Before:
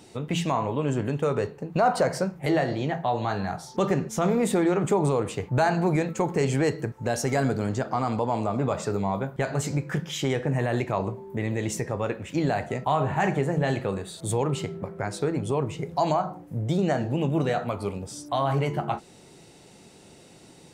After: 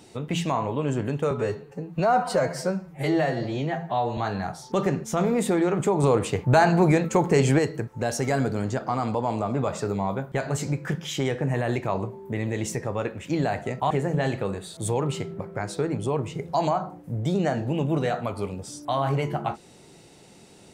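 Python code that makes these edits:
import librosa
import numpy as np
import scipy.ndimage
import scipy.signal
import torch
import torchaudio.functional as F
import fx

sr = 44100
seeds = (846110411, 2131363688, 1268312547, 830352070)

y = fx.edit(x, sr, fx.stretch_span(start_s=1.31, length_s=1.91, factor=1.5),
    fx.clip_gain(start_s=5.08, length_s=1.55, db=4.5),
    fx.cut(start_s=12.95, length_s=0.39), tone=tone)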